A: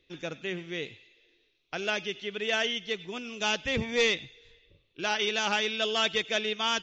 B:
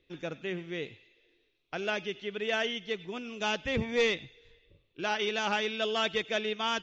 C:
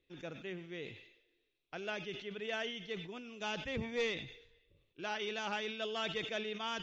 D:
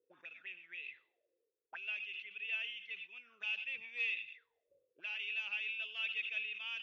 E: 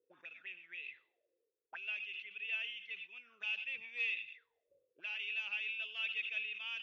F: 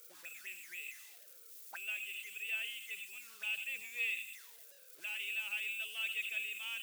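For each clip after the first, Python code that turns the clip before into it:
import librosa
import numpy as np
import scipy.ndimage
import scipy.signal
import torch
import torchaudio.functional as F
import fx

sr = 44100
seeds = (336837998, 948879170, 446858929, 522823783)

y1 = fx.high_shelf(x, sr, hz=3000.0, db=-9.0)
y2 = fx.sustainer(y1, sr, db_per_s=78.0)
y2 = y2 * librosa.db_to_amplitude(-8.5)
y3 = fx.auto_wah(y2, sr, base_hz=460.0, top_hz=2600.0, q=12.0, full_db=-41.0, direction='up')
y3 = y3 * librosa.db_to_amplitude(10.0)
y4 = y3
y5 = y4 + 0.5 * 10.0 ** (-43.5 / 20.0) * np.diff(np.sign(y4), prepend=np.sign(y4[:1]))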